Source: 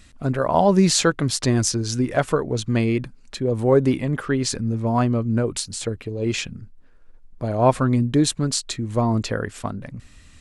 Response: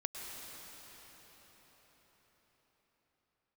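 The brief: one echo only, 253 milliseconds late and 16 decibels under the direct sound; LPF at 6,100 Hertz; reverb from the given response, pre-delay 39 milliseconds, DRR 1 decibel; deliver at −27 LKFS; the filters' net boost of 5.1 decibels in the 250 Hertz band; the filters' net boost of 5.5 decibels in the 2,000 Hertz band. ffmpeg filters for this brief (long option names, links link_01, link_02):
-filter_complex "[0:a]lowpass=6100,equalizer=frequency=250:width_type=o:gain=6,equalizer=frequency=2000:width_type=o:gain=7.5,aecho=1:1:253:0.158,asplit=2[link_01][link_02];[1:a]atrim=start_sample=2205,adelay=39[link_03];[link_02][link_03]afir=irnorm=-1:irlink=0,volume=-2dB[link_04];[link_01][link_04]amix=inputs=2:normalize=0,volume=-10.5dB"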